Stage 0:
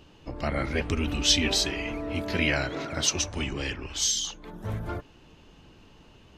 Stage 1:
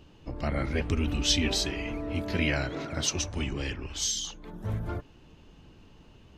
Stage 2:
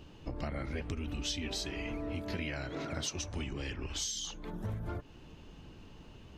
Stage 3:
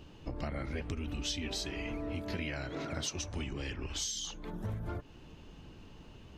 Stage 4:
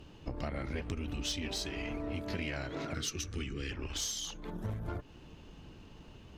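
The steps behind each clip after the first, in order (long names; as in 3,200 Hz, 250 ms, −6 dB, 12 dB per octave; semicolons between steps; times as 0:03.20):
low-shelf EQ 330 Hz +5.5 dB; level −4 dB
downward compressor 6 to 1, threshold −36 dBFS, peak gain reduction 15 dB; level +1.5 dB
no processing that can be heard
harmonic generator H 6 −24 dB, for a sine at −21.5 dBFS; gain on a spectral selection 0:02.94–0:03.71, 500–1,100 Hz −14 dB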